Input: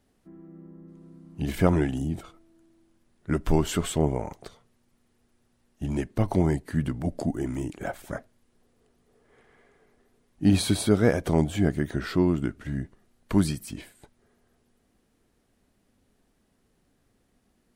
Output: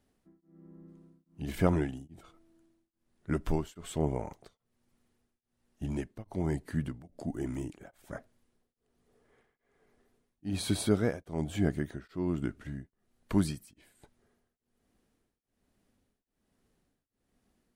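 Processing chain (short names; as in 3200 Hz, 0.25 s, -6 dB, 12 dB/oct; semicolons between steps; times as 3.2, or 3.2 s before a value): beating tremolo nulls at 1.2 Hz; gain -5 dB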